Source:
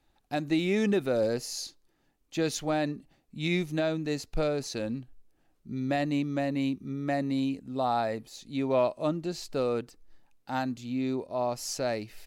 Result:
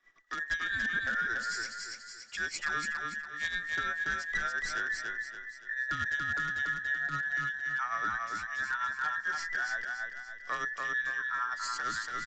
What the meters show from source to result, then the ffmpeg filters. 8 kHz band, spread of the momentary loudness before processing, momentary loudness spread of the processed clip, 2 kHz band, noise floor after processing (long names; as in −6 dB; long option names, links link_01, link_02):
−3.0 dB, 9 LU, 7 LU, +11.5 dB, −49 dBFS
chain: -filter_complex "[0:a]afftfilt=real='real(if(between(b,1,1012),(2*floor((b-1)/92)+1)*92-b,b),0)':imag='imag(if(between(b,1,1012),(2*floor((b-1)/92)+1)*92-b,b),0)*if(between(b,1,1012),-1,1)':win_size=2048:overlap=0.75,equalizer=frequency=75:width=0.6:gain=-4,acrossover=split=160|1400[link_01][link_02][link_03];[link_02]alimiter=level_in=7dB:limit=-24dB:level=0:latency=1:release=11,volume=-7dB[link_04];[link_01][link_04][link_03]amix=inputs=3:normalize=0,acrossover=split=360[link_05][link_06];[link_06]acompressor=threshold=-32dB:ratio=10[link_07];[link_05][link_07]amix=inputs=2:normalize=0,asplit=2[link_08][link_09];[link_09]aeval=exprs='(mod(21.1*val(0)+1,2)-1)/21.1':channel_layout=same,volume=-5dB[link_10];[link_08][link_10]amix=inputs=2:normalize=0,tremolo=f=8.9:d=0.6,asoftclip=type=hard:threshold=-24.5dB,aecho=1:1:285|570|855|1140|1425:0.708|0.276|0.108|0.042|0.0164,aresample=16000,aresample=44100,adynamicequalizer=threshold=0.00708:dfrequency=2800:dqfactor=0.7:tfrequency=2800:tqfactor=0.7:attack=5:release=100:ratio=0.375:range=2:mode=cutabove:tftype=highshelf"